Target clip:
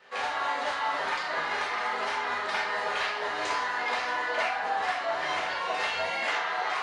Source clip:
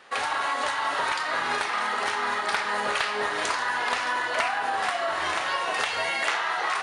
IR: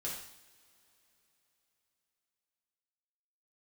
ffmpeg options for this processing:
-filter_complex "[0:a]equalizer=f=9.6k:t=o:w=0.62:g=-13.5,acrossover=split=430|3400[a][b][c];[a]alimiter=level_in=13.5dB:limit=-24dB:level=0:latency=1,volume=-13.5dB[d];[d][b][c]amix=inputs=3:normalize=0[e];[1:a]atrim=start_sample=2205,afade=t=out:st=0.17:d=0.01,atrim=end_sample=7938,asetrate=61740,aresample=44100[f];[e][f]afir=irnorm=-1:irlink=0"

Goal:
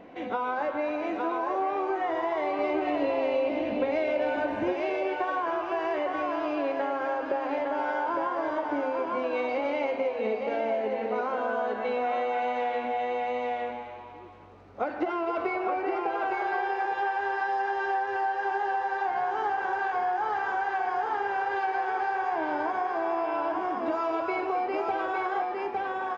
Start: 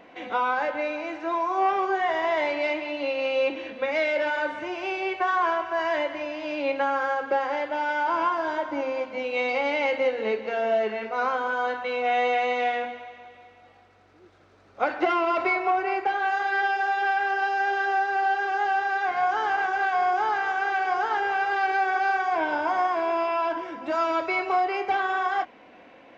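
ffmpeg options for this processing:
-filter_complex "[0:a]tiltshelf=f=870:g=6,aecho=1:1:858:0.531,acompressor=threshold=-26dB:ratio=6,asettb=1/sr,asplit=3[a][b][c];[a]atrim=end=2.594[d];[b]atrim=start=2.59:end=4.73,asetpts=PTS-STARTPTS,afade=t=in:d=0.004:c=qsin,afade=t=out:st=2.136:d=0.004:c=qsin,lowshelf=f=240:g=10[e];[c]atrim=start=4.726[f];[d][e]acrossfade=d=0.004:c1=hsin:c2=qsin[g];[g][f]acrossfade=d=0.004:c1=qsin:c2=hsin,asplit=5[h][i][j][k][l];[i]adelay=263,afreqshift=120,volume=-11.5dB[m];[j]adelay=526,afreqshift=240,volume=-19.2dB[n];[k]adelay=789,afreqshift=360,volume=-27dB[o];[l]adelay=1052,afreqshift=480,volume=-34.7dB[p];[h][m][n][o][p]amix=inputs=5:normalize=0"

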